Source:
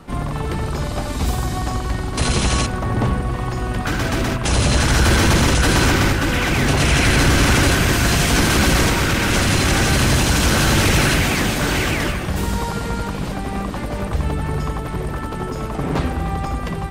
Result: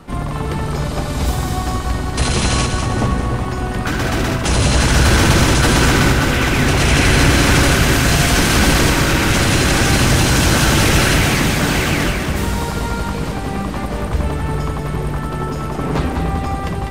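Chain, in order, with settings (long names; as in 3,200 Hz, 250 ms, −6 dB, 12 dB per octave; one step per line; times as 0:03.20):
echo with a time of its own for lows and highs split 700 Hz, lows 294 ms, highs 198 ms, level −6.5 dB
level +1.5 dB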